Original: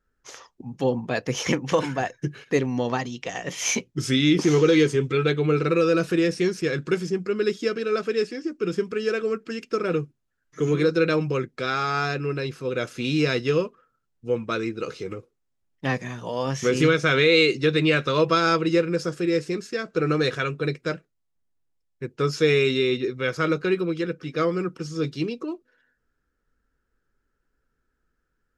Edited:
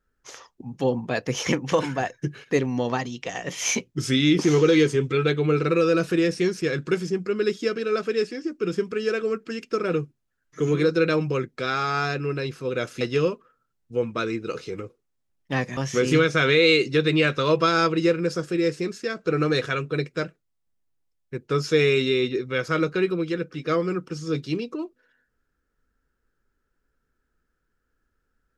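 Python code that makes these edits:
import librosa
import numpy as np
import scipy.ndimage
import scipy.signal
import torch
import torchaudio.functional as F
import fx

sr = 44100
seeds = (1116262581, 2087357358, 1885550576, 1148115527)

y = fx.edit(x, sr, fx.cut(start_s=13.01, length_s=0.33),
    fx.cut(start_s=16.1, length_s=0.36), tone=tone)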